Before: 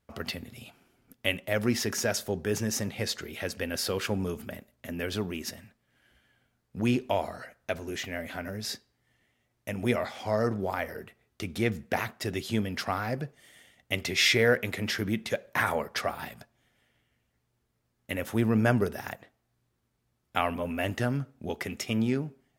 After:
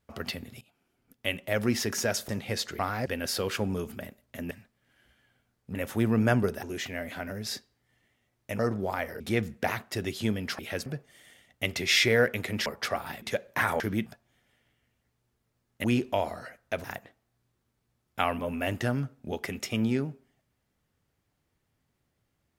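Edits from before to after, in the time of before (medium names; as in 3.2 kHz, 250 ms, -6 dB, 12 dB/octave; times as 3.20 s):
0.61–1.52 s: fade in, from -21.5 dB
2.29–2.79 s: delete
3.29–3.56 s: swap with 12.88–13.15 s
5.01–5.57 s: delete
6.81–7.81 s: swap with 18.13–19.01 s
9.77–10.39 s: delete
11.00–11.49 s: delete
14.95–15.21 s: swap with 15.79–16.35 s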